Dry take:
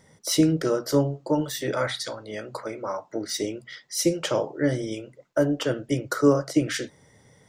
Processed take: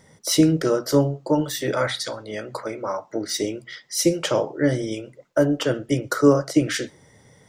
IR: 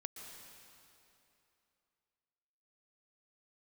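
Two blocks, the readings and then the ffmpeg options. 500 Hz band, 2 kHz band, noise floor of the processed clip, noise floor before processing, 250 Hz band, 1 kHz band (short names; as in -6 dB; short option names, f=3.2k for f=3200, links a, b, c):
+3.5 dB, +3.5 dB, -55 dBFS, -59 dBFS, +3.0 dB, +3.5 dB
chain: -filter_complex "[0:a]asplit=2[a][b];[1:a]atrim=start_sample=2205,afade=t=out:st=0.19:d=0.01,atrim=end_sample=8820[c];[b][c]afir=irnorm=-1:irlink=0,volume=-16dB[d];[a][d]amix=inputs=2:normalize=0,volume=2.5dB"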